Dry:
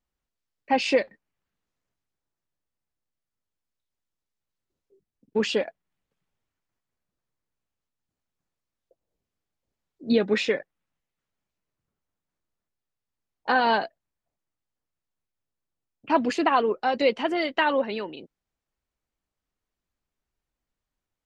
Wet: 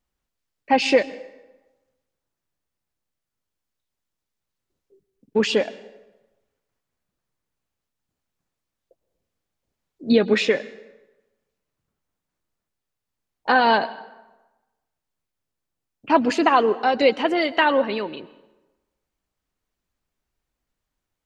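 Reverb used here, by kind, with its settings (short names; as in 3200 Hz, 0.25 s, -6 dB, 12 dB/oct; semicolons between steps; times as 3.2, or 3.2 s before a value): plate-style reverb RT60 1.1 s, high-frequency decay 0.7×, pre-delay 0.1 s, DRR 18 dB; gain +4.5 dB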